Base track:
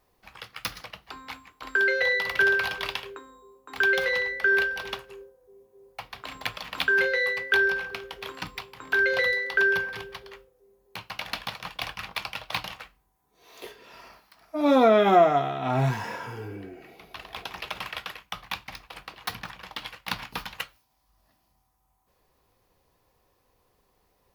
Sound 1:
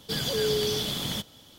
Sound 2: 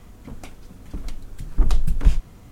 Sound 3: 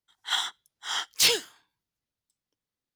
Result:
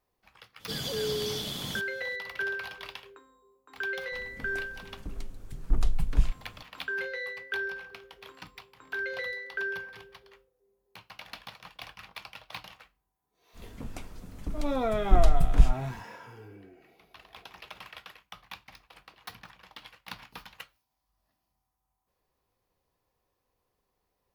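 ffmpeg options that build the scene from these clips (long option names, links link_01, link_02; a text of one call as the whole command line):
ffmpeg -i bed.wav -i cue0.wav -i cue1.wav -filter_complex "[2:a]asplit=2[link_01][link_02];[0:a]volume=-11dB[link_03];[1:a]atrim=end=1.58,asetpts=PTS-STARTPTS,volume=-5dB,afade=type=in:duration=0.02,afade=type=out:start_time=1.56:duration=0.02,adelay=590[link_04];[link_01]atrim=end=2.51,asetpts=PTS-STARTPTS,volume=-7dB,afade=type=in:duration=0.004:curve=hsin,afade=type=out:start_time=2.506:duration=0.004:curve=hsin,adelay=4120[link_05];[link_02]atrim=end=2.51,asetpts=PTS-STARTPTS,volume=-2.5dB,afade=type=in:duration=0.05,afade=type=out:start_time=2.46:duration=0.05,adelay=13530[link_06];[link_03][link_04][link_05][link_06]amix=inputs=4:normalize=0" out.wav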